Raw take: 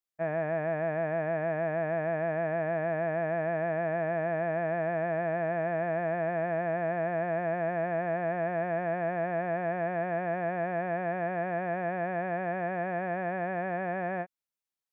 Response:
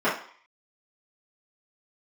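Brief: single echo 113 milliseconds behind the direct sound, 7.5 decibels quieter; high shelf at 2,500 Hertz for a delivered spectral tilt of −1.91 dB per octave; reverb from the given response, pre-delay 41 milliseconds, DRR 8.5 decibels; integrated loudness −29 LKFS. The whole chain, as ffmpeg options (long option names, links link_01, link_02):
-filter_complex "[0:a]highshelf=frequency=2500:gain=4.5,aecho=1:1:113:0.422,asplit=2[link_01][link_02];[1:a]atrim=start_sample=2205,adelay=41[link_03];[link_02][link_03]afir=irnorm=-1:irlink=0,volume=-25dB[link_04];[link_01][link_04]amix=inputs=2:normalize=0"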